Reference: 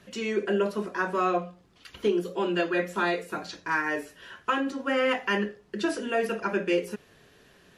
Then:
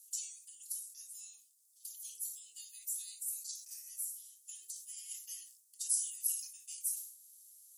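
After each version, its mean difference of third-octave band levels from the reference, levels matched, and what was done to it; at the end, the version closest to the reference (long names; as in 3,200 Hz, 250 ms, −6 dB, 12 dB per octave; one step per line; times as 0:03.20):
23.5 dB: frequency shifter +100 Hz
inverse Chebyshev high-pass filter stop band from 1,600 Hz, stop band 80 dB
level that may fall only so fast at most 88 dB per second
level +16.5 dB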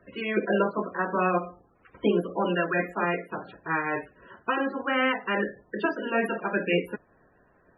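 7.5 dB: ceiling on every frequency bin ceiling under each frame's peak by 15 dB
parametric band 6,800 Hz −12 dB 2 octaves
spectral peaks only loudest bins 32
level +2.5 dB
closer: second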